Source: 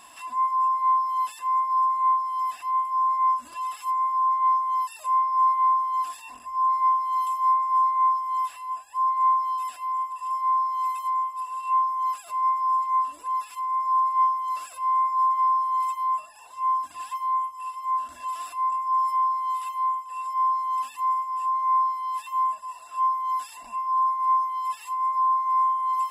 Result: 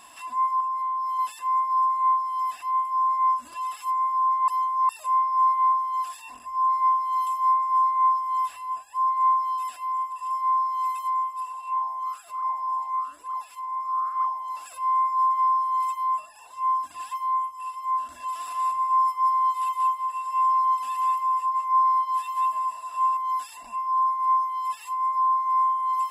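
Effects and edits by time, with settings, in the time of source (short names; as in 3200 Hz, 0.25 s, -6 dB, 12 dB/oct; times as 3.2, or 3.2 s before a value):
0.6–1.19 compressor 10:1, threshold -25 dBFS
2.66–3.37 brick-wall FIR high-pass 740 Hz
4.48–4.89 reverse
5.72–6.2 HPF 620 Hz 6 dB/oct
8.04–8.83 low shelf 450 Hz +5.5 dB
11.52–14.66 flange 1.1 Hz, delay 1.2 ms, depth 9.7 ms, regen -87%
18.29–23.17 feedback echo 0.187 s, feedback 24%, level -4 dB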